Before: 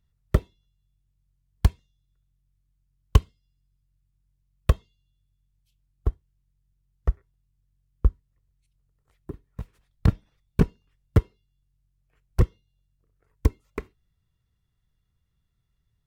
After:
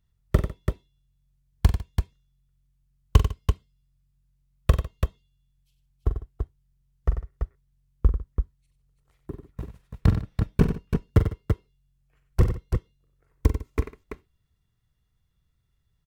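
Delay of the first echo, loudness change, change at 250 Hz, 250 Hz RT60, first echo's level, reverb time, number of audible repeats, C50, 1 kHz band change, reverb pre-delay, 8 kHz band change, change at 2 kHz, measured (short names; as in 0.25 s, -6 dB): 43 ms, -0.5 dB, +2.0 dB, none, -9.0 dB, none, 4, none, +2.0 dB, none, n/a, +2.0 dB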